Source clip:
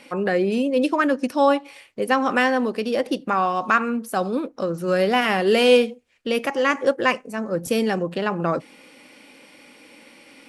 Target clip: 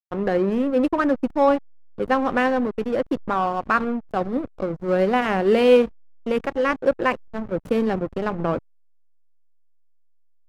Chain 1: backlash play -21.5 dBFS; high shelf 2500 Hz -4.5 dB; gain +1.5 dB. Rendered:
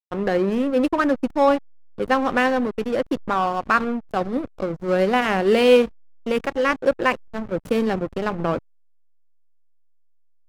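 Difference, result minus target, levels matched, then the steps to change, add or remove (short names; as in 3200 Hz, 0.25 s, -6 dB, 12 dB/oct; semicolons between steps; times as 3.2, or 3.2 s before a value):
4000 Hz band +4.0 dB
change: high shelf 2500 Hz -12 dB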